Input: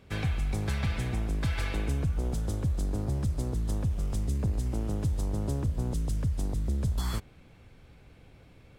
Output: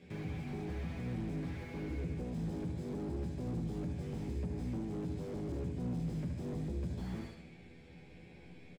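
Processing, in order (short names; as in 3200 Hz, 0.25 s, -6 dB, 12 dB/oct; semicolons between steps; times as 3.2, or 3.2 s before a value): LPF 7900 Hz 12 dB/oct; bell 1200 Hz -10.5 dB 0.78 oct; notches 50/100/150/200/250 Hz; doubler 12 ms -3 dB; compressor, threshold -28 dBFS, peak gain reduction 8 dB; reverb RT60 0.60 s, pre-delay 3 ms, DRR -0.5 dB; limiter -27.5 dBFS, peak gain reduction 9.5 dB; feedback echo 74 ms, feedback 47%, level -11 dB; slew limiter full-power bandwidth 7.2 Hz; gain -3.5 dB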